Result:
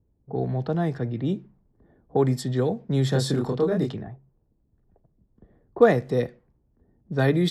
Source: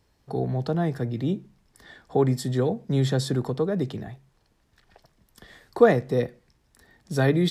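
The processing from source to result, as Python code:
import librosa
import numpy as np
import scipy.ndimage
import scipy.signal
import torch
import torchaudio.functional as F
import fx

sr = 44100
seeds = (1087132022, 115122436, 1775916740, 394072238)

y = fx.doubler(x, sr, ms=28.0, db=-2, at=(3.12, 3.92), fade=0.02)
y = fx.env_lowpass(y, sr, base_hz=340.0, full_db=-19.5)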